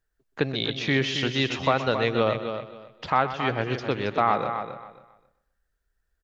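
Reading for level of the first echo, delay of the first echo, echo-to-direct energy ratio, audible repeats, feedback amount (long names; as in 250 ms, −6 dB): −13.0 dB, 125 ms, −6.5 dB, 4, repeats not evenly spaced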